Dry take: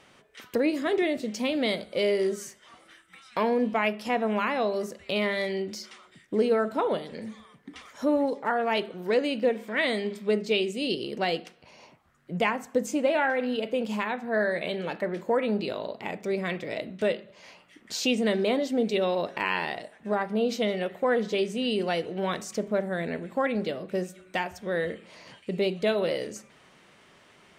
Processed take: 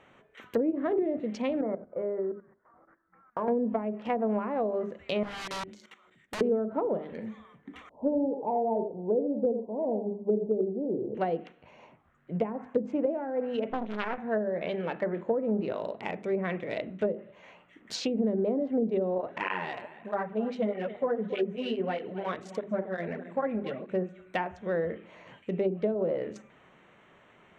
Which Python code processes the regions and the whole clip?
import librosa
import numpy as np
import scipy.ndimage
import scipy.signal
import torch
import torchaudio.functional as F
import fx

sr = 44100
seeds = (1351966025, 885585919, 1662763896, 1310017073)

y = fx.chain(x, sr, fx.steep_lowpass(hz=1500.0, slope=36),
    fx.hum_notches(base_hz=60, count=10),
    fx.level_steps(step_db=15), at=(1.61, 3.48))
y = fx.chain(y, sr, fx.high_shelf(hz=2700.0, db=5.5),
    fx.level_steps(step_db=15),
    fx.overflow_wrap(gain_db=29.5), at=(5.23, 6.41))
y = fx.chain(y, sr, fx.steep_lowpass(hz=920.0, slope=72),
    fx.echo_single(ms=83, db=-8.0), at=(7.89, 11.15))
y = fx.chain(y, sr, fx.halfwave_gain(db=-12.0),
    fx.lowpass(hz=5500.0, slope=12),
    fx.doppler_dist(depth_ms=0.77), at=(13.7, 14.18))
y = fx.chain(y, sr, fx.echo_feedback(ms=273, feedback_pct=24, wet_db=-15),
    fx.flanger_cancel(hz=1.6, depth_ms=6.7), at=(19.18, 23.89))
y = fx.wiener(y, sr, points=9)
y = fx.hum_notches(y, sr, base_hz=50, count=8)
y = fx.env_lowpass_down(y, sr, base_hz=440.0, full_db=-21.5)